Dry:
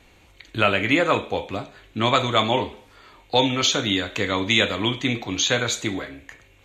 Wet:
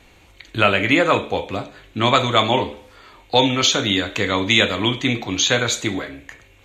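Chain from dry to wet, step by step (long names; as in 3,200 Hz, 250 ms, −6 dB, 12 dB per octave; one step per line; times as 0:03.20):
hum removal 73.28 Hz, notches 8
level +3.5 dB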